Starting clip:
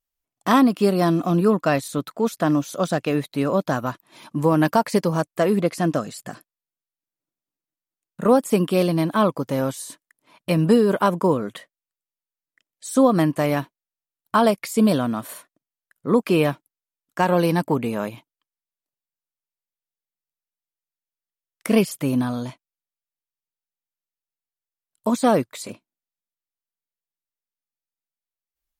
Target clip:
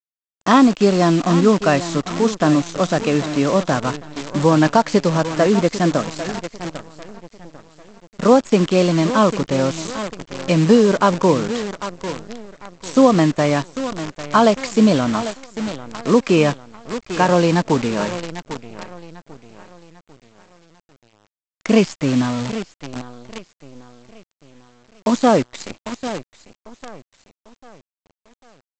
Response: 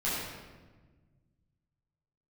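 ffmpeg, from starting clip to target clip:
-af "aecho=1:1:797|1594|2391|3188:0.224|0.0963|0.0414|0.0178,aresample=16000,acrusher=bits=6:dc=4:mix=0:aa=0.000001,aresample=44100,volume=4dB"

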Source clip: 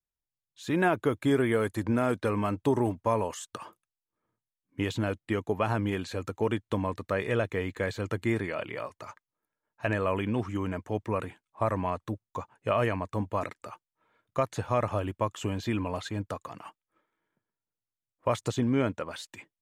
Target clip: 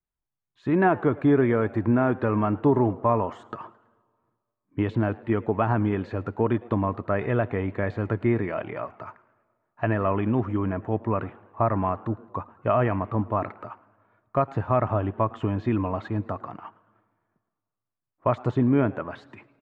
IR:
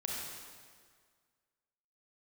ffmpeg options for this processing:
-filter_complex "[0:a]lowpass=1.4k,equalizer=f=490:w=5.9:g=-7.5,asetrate=45392,aresample=44100,atempo=0.971532,asplit=4[a][b][c][d];[b]adelay=109,afreqshift=130,volume=-23dB[e];[c]adelay=218,afreqshift=260,volume=-30.7dB[f];[d]adelay=327,afreqshift=390,volume=-38.5dB[g];[a][e][f][g]amix=inputs=4:normalize=0,asplit=2[h][i];[1:a]atrim=start_sample=2205[j];[i][j]afir=irnorm=-1:irlink=0,volume=-24dB[k];[h][k]amix=inputs=2:normalize=0,volume=5.5dB"

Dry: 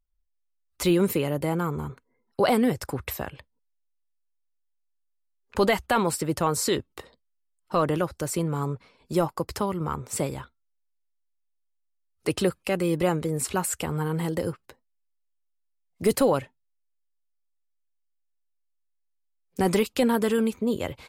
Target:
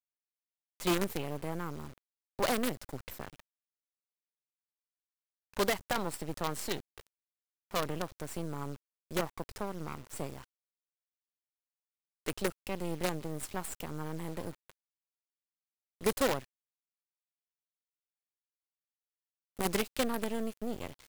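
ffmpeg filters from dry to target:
-af "acrusher=bits=4:dc=4:mix=0:aa=0.000001,volume=-9dB"

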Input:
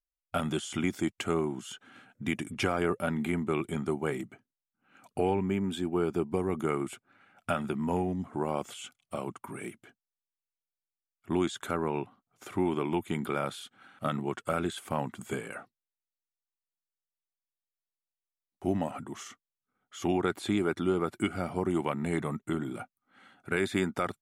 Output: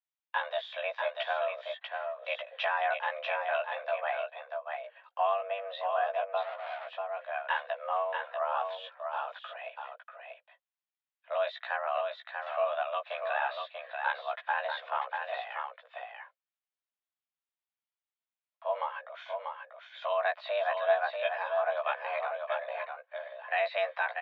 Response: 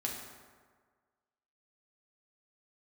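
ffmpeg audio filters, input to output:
-filter_complex "[0:a]aecho=1:1:640:0.562,asettb=1/sr,asplit=3[a][b][c];[a]atrim=end=6.414[d];[b]atrim=start=6.41:end=6.87,asetpts=PTS-STARTPTS,afade=t=in:d=0.004:c=qsin,afade=t=out:st=0.456:d=0.004:c=qsin,volume=35.5dB,asoftclip=hard,volume=-35.5dB[e];[c]atrim=start=6.866[f];[d][e]acrossfade=d=0.004:c1=hsin:c2=qsin[g];[g][f]acrossfade=d=0.004:c1=qsin:c2=hsin,asplit=2[h][i];[i]adelay=16,volume=-3dB[j];[h][j]amix=inputs=2:normalize=0,highpass=f=320:t=q:w=0.5412,highpass=f=320:t=q:w=1.307,lowpass=f=3.5k:t=q:w=0.5176,lowpass=f=3.5k:t=q:w=0.7071,lowpass=f=3.5k:t=q:w=1.932,afreqshift=290,volume=-1.5dB"

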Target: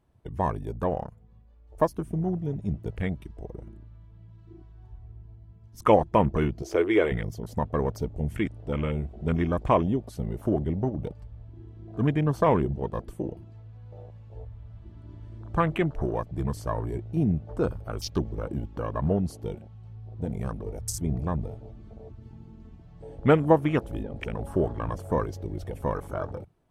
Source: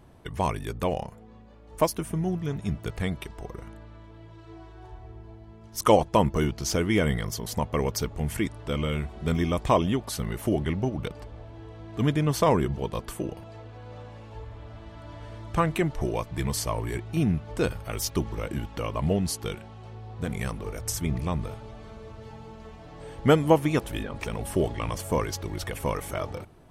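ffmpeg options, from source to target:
-filter_complex "[0:a]afwtdn=0.0178,asettb=1/sr,asplit=3[a][b][c];[a]atrim=end=6.624[d];[b]atrim=start=6.62:end=7.12,asetpts=PTS-STARTPTS,afade=t=in:d=0.004:c=qsin,afade=t=out:st=0.496:d=0.004:c=qsin,lowshelf=f=270:t=q:w=3:g=-10.5[e];[c]atrim=start=7.116[f];[d][e]acrossfade=d=0.004:c1=hsin:c2=qsin[g];[g][f]acrossfade=d=0.004:c1=qsin:c2=hsin"

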